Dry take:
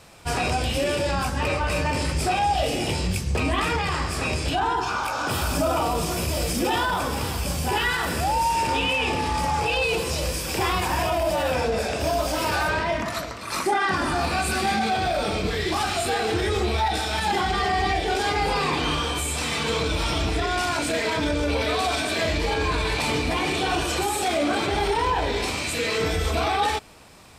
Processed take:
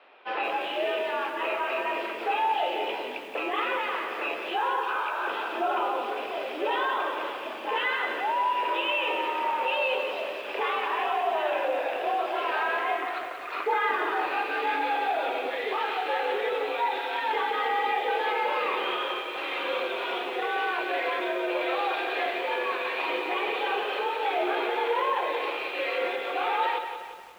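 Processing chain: mistuned SSB +67 Hz 290–3200 Hz; bit-crushed delay 178 ms, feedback 55%, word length 8-bit, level -8 dB; trim -3.5 dB

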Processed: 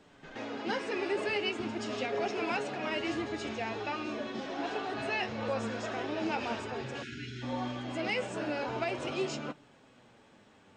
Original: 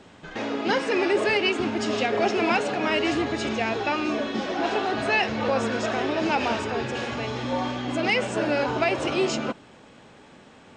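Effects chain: flange 0.42 Hz, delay 6.6 ms, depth 3.7 ms, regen +56%; reverse echo 129 ms -14 dB; spectral selection erased 7.03–7.43 s, 410–1300 Hz; trim -6 dB

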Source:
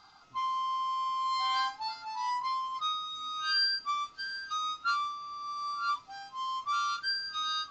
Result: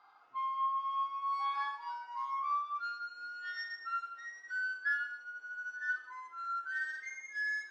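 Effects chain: pitch bend over the whole clip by +5.5 st starting unshifted; three-band isolator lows -23 dB, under 360 Hz, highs -21 dB, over 2.4 kHz; gated-style reverb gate 300 ms falling, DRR 4.5 dB; trim -3.5 dB

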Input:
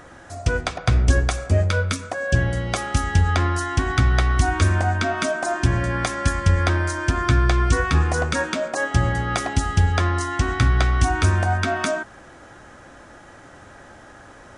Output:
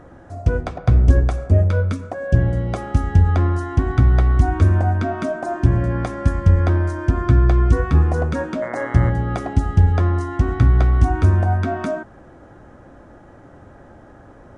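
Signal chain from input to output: tilt shelf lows +10 dB, about 1.3 kHz; 8.61–9.09 s: mains buzz 120 Hz, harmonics 18, -27 dBFS 0 dB/octave; trim -5.5 dB

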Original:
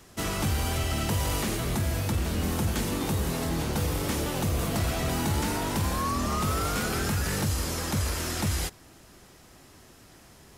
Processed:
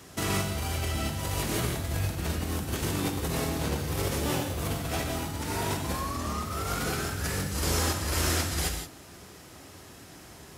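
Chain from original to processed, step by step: high-pass 60 Hz 12 dB/octave; compressor with a negative ratio -31 dBFS, ratio -0.5; gated-style reverb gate 200 ms flat, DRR 3.5 dB

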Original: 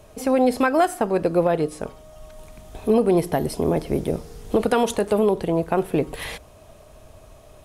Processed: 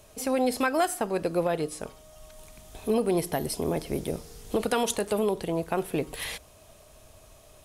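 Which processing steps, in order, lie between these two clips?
treble shelf 2.3 kHz +10 dB; trim -7.5 dB

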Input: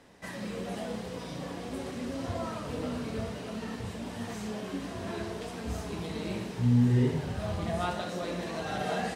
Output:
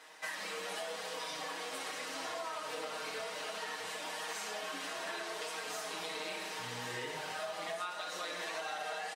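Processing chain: high-pass 860 Hz 12 dB/octave; comb 6.4 ms, depth 92%; compression 12:1, threshold -41 dBFS, peak gain reduction 13.5 dB; trim +4.5 dB

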